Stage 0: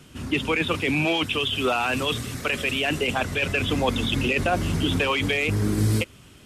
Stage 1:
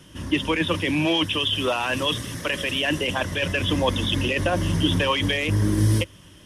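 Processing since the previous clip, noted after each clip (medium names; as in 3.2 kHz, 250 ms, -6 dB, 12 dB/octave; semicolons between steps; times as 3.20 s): rippled EQ curve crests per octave 1.2, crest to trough 8 dB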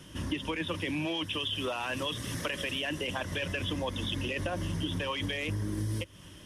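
compression 6:1, threshold -29 dBFS, peak gain reduction 13.5 dB; trim -1.5 dB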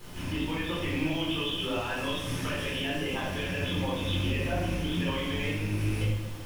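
rattle on loud lows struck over -35 dBFS, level -30 dBFS; added noise pink -48 dBFS; simulated room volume 510 m³, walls mixed, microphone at 4.1 m; trim -8.5 dB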